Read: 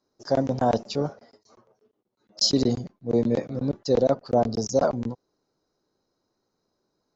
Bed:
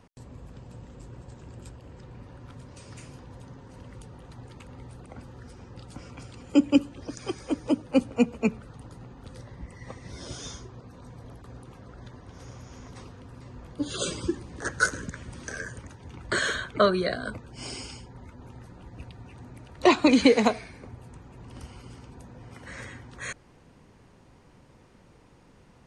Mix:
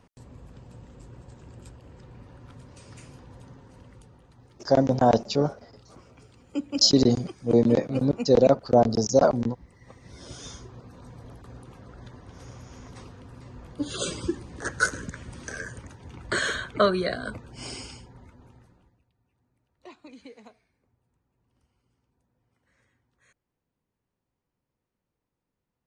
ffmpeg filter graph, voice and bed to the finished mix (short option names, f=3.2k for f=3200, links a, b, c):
-filter_complex "[0:a]adelay=4400,volume=3dB[a];[1:a]volume=8dB,afade=t=out:st=3.48:d=0.82:silence=0.398107,afade=t=in:st=9.78:d=0.98:silence=0.316228,afade=t=out:st=17.72:d=1.28:silence=0.0375837[b];[a][b]amix=inputs=2:normalize=0"